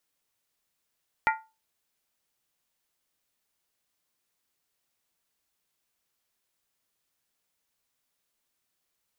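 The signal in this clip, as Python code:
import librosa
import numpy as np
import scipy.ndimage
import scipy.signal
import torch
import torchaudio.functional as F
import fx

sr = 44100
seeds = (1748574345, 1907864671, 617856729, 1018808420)

y = fx.strike_skin(sr, length_s=0.63, level_db=-19.0, hz=884.0, decay_s=0.28, tilt_db=2.5, modes=5)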